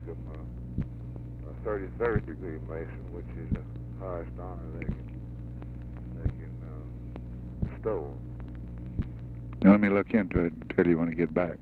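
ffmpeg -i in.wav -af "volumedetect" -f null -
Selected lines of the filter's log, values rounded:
mean_volume: -30.8 dB
max_volume: -6.9 dB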